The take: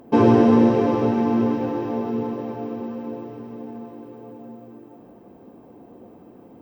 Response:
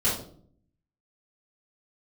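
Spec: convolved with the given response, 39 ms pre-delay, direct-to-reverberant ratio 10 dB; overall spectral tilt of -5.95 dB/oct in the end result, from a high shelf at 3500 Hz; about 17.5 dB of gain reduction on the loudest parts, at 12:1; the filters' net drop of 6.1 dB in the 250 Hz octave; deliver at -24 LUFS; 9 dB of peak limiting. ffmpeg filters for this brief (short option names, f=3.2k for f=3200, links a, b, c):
-filter_complex "[0:a]equalizer=f=250:t=o:g=-7,highshelf=f=3.5k:g=-9,acompressor=threshold=-32dB:ratio=12,alimiter=level_in=6dB:limit=-24dB:level=0:latency=1,volume=-6dB,asplit=2[a][b];[1:a]atrim=start_sample=2205,adelay=39[c];[b][c]afir=irnorm=-1:irlink=0,volume=-21.5dB[d];[a][d]amix=inputs=2:normalize=0,volume=15dB"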